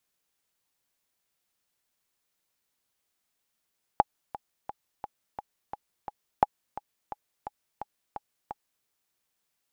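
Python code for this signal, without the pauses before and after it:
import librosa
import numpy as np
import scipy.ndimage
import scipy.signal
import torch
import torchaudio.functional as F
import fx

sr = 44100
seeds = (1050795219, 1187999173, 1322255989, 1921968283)

y = fx.click_track(sr, bpm=173, beats=7, bars=2, hz=832.0, accent_db=17.0, level_db=-5.5)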